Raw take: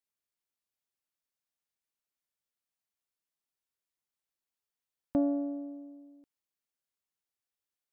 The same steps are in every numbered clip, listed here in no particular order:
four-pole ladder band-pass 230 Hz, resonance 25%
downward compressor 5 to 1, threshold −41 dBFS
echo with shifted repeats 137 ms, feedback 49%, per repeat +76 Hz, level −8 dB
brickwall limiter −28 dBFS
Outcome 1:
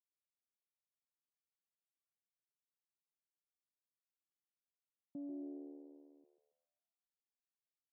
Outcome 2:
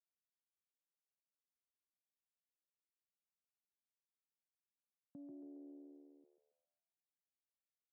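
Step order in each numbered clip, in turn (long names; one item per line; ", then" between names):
brickwall limiter, then echo with shifted repeats, then four-pole ladder band-pass, then downward compressor
downward compressor, then echo with shifted repeats, then brickwall limiter, then four-pole ladder band-pass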